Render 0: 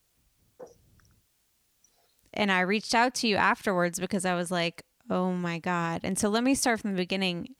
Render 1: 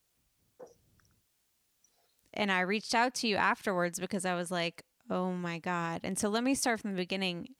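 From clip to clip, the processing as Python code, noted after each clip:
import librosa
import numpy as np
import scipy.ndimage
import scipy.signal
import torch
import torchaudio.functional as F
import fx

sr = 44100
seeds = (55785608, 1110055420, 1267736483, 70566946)

y = fx.low_shelf(x, sr, hz=100.0, db=-6.0)
y = y * librosa.db_to_amplitude(-4.5)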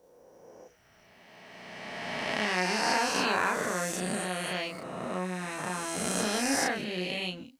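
y = fx.spec_swells(x, sr, rise_s=2.63)
y = fx.doubler(y, sr, ms=33.0, db=-2.5)
y = y * librosa.db_to_amplitude(-5.5)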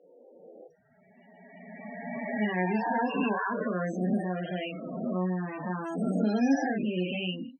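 y = fx.spec_topn(x, sr, count=16)
y = fx.bandpass_edges(y, sr, low_hz=160.0, high_hz=5100.0)
y = fx.small_body(y, sr, hz=(210.0, 2800.0), ring_ms=20, db=10)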